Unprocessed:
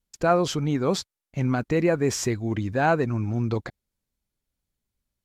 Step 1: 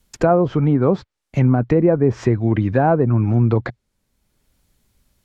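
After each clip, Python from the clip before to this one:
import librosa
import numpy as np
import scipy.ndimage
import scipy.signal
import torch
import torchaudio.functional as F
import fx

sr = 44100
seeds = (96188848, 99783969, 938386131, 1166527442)

y = fx.env_lowpass_down(x, sr, base_hz=850.0, full_db=-19.0)
y = fx.dynamic_eq(y, sr, hz=120.0, q=5.3, threshold_db=-42.0, ratio=4.0, max_db=4)
y = fx.band_squash(y, sr, depth_pct=40)
y = F.gain(torch.from_numpy(y), 7.5).numpy()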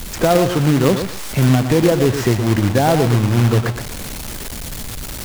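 y = x + 0.5 * 10.0 ** (-22.0 / 20.0) * np.sign(x)
y = fx.echo_feedback(y, sr, ms=117, feedback_pct=21, wet_db=-8.5)
y = fx.quant_companded(y, sr, bits=4)
y = F.gain(torch.from_numpy(y), -1.0).numpy()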